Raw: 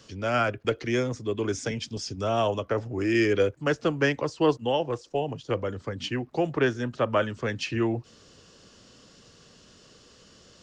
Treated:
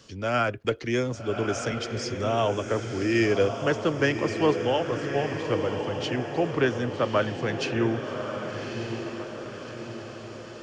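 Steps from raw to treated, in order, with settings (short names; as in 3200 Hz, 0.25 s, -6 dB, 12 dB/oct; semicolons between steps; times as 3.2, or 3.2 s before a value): diffused feedback echo 1.181 s, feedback 53%, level -6.5 dB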